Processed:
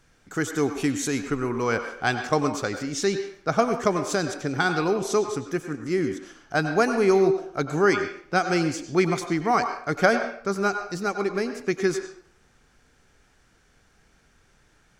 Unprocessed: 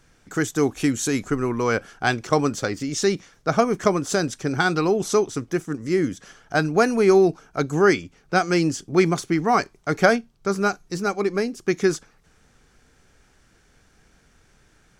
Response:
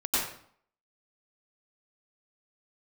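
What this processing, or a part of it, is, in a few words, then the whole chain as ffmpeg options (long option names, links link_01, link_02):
filtered reverb send: -filter_complex "[0:a]asplit=2[link_01][link_02];[link_02]highpass=410,lowpass=5600[link_03];[1:a]atrim=start_sample=2205[link_04];[link_03][link_04]afir=irnorm=-1:irlink=0,volume=-15.5dB[link_05];[link_01][link_05]amix=inputs=2:normalize=0,volume=-3.5dB"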